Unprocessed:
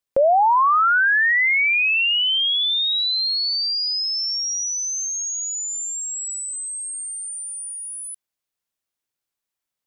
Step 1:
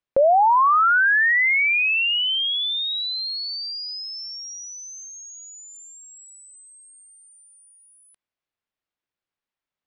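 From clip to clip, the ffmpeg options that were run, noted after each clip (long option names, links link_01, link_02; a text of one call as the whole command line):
ffmpeg -i in.wav -af "lowpass=3200" out.wav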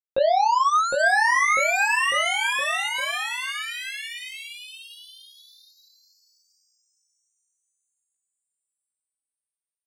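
ffmpeg -i in.wav -filter_complex "[0:a]aeval=exprs='0.266*(cos(1*acos(clip(val(0)/0.266,-1,1)))-cos(1*PI/2))+0.0299*(cos(3*acos(clip(val(0)/0.266,-1,1)))-cos(3*PI/2))+0.0237*(cos(7*acos(clip(val(0)/0.266,-1,1)))-cos(7*PI/2))':channel_layout=same,flanger=delay=15.5:depth=5.5:speed=0.88,asplit=2[link_01][link_02];[link_02]aecho=0:1:760|1406|1955|2422|2819:0.631|0.398|0.251|0.158|0.1[link_03];[link_01][link_03]amix=inputs=2:normalize=0" out.wav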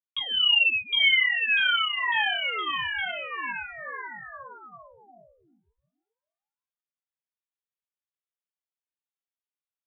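ffmpeg -i in.wav -filter_complex "[0:a]lowpass=frequency=3200:width_type=q:width=0.5098,lowpass=frequency=3200:width_type=q:width=0.6013,lowpass=frequency=3200:width_type=q:width=0.9,lowpass=frequency=3200:width_type=q:width=2.563,afreqshift=-3800,asplit=2[link_01][link_02];[link_02]adelay=2.8,afreqshift=-1.9[link_03];[link_01][link_03]amix=inputs=2:normalize=1" out.wav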